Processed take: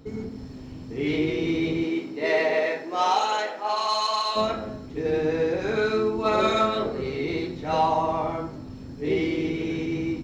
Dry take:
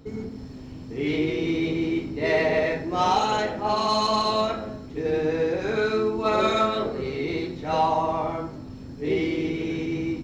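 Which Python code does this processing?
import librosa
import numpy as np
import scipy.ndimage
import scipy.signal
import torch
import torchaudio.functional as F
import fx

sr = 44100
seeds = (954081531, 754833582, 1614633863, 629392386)

y = fx.highpass(x, sr, hz=fx.line((1.83, 230.0), (4.35, 940.0)), slope=12, at=(1.83, 4.35), fade=0.02)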